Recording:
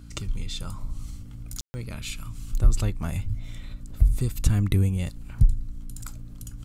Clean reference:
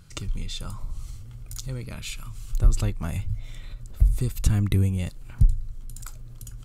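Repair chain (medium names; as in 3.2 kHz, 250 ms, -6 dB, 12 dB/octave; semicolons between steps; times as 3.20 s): de-hum 57.6 Hz, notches 5; room tone fill 1.61–1.74 s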